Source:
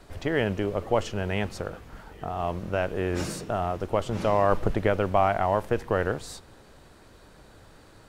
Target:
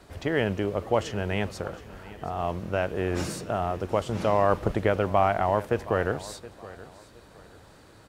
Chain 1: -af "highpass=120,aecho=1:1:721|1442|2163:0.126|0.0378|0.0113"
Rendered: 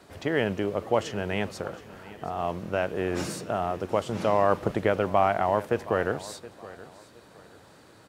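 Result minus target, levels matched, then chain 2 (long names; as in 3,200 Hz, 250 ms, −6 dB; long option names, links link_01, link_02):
125 Hz band −3.5 dB
-af "highpass=44,aecho=1:1:721|1442|2163:0.126|0.0378|0.0113"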